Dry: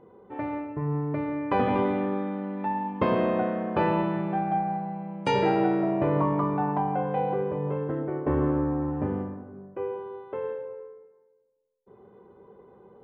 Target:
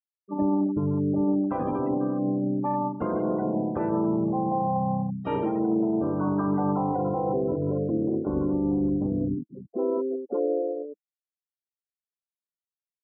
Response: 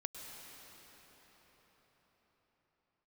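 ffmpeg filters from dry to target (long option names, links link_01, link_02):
-filter_complex "[0:a]afftfilt=real='re*gte(hypot(re,im),0.0631)':imag='im*gte(hypot(re,im),0.0631)':win_size=1024:overlap=0.75,equalizer=frequency=315:width_type=o:width=0.33:gain=10,equalizer=frequency=1250:width_type=o:width=0.33:gain=4,equalizer=frequency=2500:width_type=o:width=0.33:gain=-9,equalizer=frequency=4000:width_type=o:width=0.33:gain=-5,areverse,acompressor=threshold=-30dB:ratio=6,areverse,highshelf=frequency=2300:gain=-2.5,alimiter=level_in=3.5dB:limit=-24dB:level=0:latency=1:release=64,volume=-3.5dB,bandreject=frequency=1700:width=8.9,asplit=3[link_01][link_02][link_03];[link_02]asetrate=29433,aresample=44100,atempo=1.49831,volume=-6dB[link_04];[link_03]asetrate=58866,aresample=44100,atempo=0.749154,volume=-12dB[link_05];[link_01][link_04][link_05]amix=inputs=3:normalize=0,volume=8dB"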